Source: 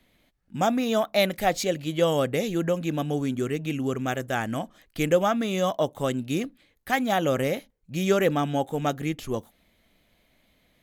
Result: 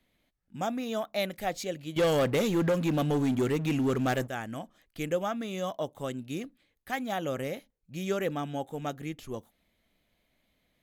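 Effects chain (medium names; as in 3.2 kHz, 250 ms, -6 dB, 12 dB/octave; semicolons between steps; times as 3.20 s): 1.96–4.28 s: waveshaping leveller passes 3; trim -8.5 dB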